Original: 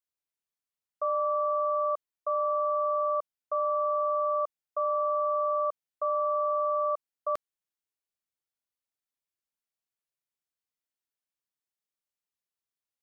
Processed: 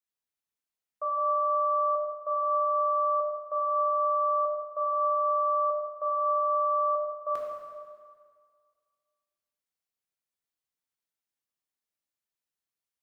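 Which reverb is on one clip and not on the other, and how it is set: plate-style reverb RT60 1.9 s, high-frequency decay 0.85×, DRR -2.5 dB; gain -4 dB

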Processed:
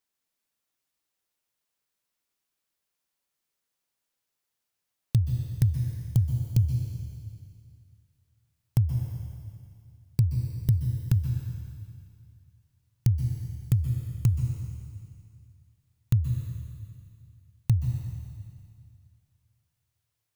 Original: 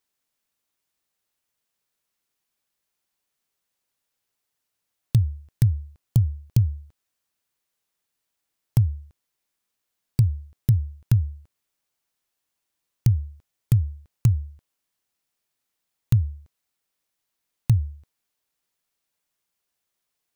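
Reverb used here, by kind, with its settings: plate-style reverb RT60 2.3 s, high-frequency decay 1×, pre-delay 0.115 s, DRR 4.5 dB; gain -4 dB

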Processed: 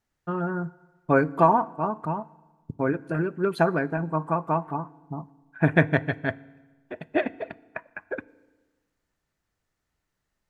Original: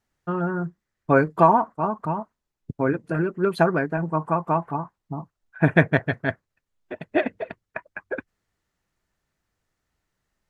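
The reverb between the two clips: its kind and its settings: FDN reverb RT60 1.3 s, low-frequency decay 1.1×, high-frequency decay 0.85×, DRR 19 dB; gain -2.5 dB

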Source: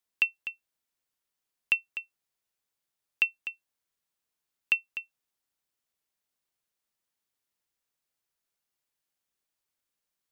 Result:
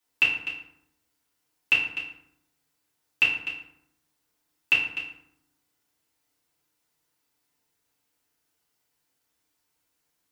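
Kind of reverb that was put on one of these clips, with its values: FDN reverb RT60 0.73 s, low-frequency decay 1.35×, high-frequency decay 0.6×, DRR -8.5 dB; gain +1.5 dB

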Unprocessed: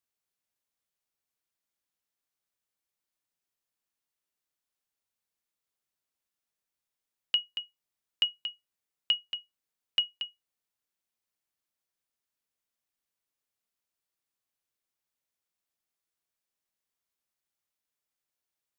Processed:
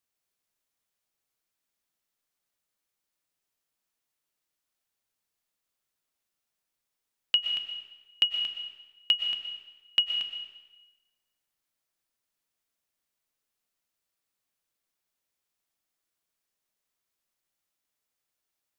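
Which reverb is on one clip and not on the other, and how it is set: digital reverb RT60 1.1 s, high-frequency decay 0.95×, pre-delay 80 ms, DRR 5.5 dB; gain +3 dB

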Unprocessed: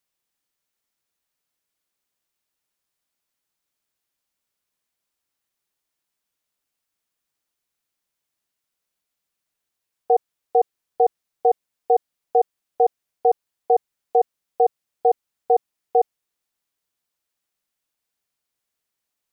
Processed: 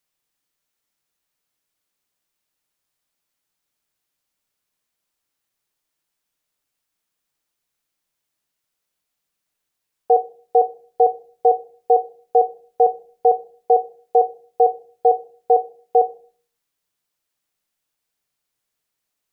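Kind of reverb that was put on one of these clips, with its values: shoebox room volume 350 m³, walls furnished, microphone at 0.46 m; gain +2 dB

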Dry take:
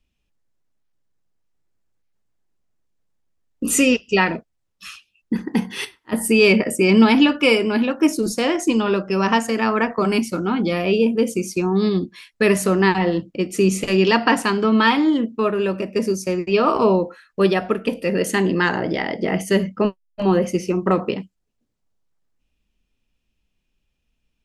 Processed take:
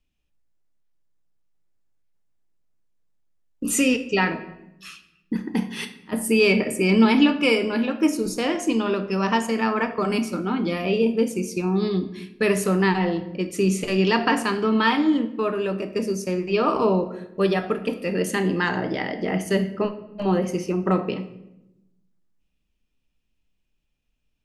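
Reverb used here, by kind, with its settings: shoebox room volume 310 m³, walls mixed, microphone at 0.41 m; gain -4.5 dB

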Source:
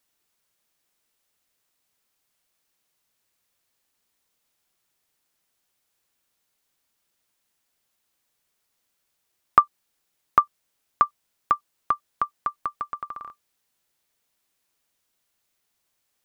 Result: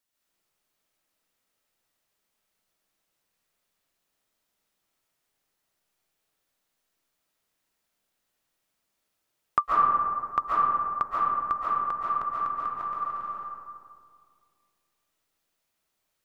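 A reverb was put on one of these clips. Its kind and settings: digital reverb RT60 2.2 s, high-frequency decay 0.35×, pre-delay 0.1 s, DRR -7 dB; gain -8.5 dB

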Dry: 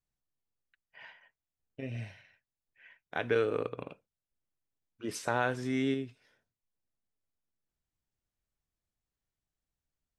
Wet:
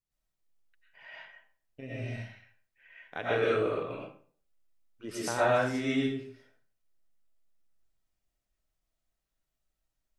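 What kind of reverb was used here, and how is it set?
digital reverb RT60 0.47 s, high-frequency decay 0.7×, pre-delay 75 ms, DRR -8 dB; gain -4 dB

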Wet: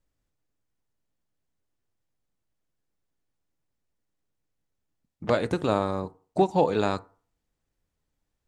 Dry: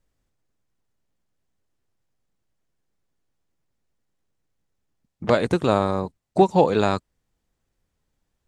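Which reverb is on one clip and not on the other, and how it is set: FDN reverb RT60 0.43 s, low-frequency decay 0.9×, high-frequency decay 0.45×, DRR 14.5 dB; gain -5 dB

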